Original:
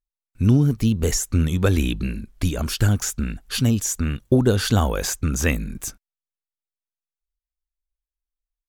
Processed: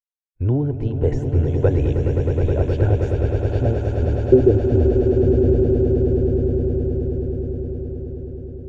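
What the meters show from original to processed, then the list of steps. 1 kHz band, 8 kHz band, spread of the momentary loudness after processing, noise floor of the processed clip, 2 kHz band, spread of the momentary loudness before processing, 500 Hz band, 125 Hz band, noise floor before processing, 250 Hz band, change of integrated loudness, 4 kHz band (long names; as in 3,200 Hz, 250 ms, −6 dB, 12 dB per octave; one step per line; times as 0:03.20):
−2.5 dB, below −25 dB, 11 LU, −35 dBFS, −9.5 dB, 9 LU, +10.0 dB, +3.5 dB, below −85 dBFS, +1.5 dB, +2.5 dB, below −15 dB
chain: downward expander −39 dBFS
low-pass filter sweep 1,100 Hz → 220 Hz, 0:03.18–0:04.96
phaser with its sweep stopped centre 490 Hz, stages 4
echo that builds up and dies away 105 ms, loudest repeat 8, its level −9 dB
level +2.5 dB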